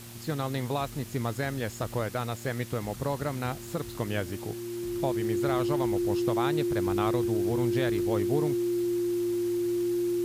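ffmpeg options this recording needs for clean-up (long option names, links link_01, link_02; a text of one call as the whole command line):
ffmpeg -i in.wav -af "adeclick=threshold=4,bandreject=frequency=116.4:width_type=h:width=4,bandreject=frequency=232.8:width_type=h:width=4,bandreject=frequency=349.2:width_type=h:width=4,bandreject=frequency=350:width=30,afwtdn=0.0045" out.wav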